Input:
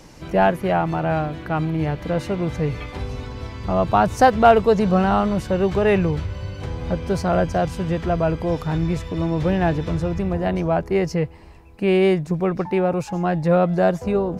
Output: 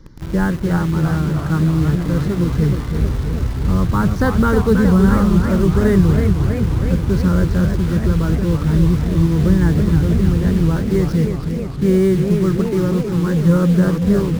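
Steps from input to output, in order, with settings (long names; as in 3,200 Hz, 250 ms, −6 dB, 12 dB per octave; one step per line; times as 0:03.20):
spectral tilt −2.5 dB per octave
phaser with its sweep stopped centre 2,600 Hz, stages 6
in parallel at −3 dB: bit reduction 5 bits
on the sum: feedback echo with a swinging delay time 319 ms, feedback 71%, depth 189 cents, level −7 dB
level −3.5 dB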